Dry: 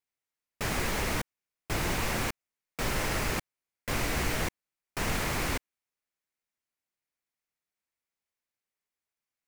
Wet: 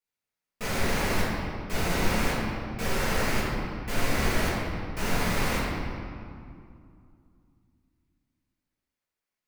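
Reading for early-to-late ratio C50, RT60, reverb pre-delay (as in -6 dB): -2.0 dB, 2.3 s, 4 ms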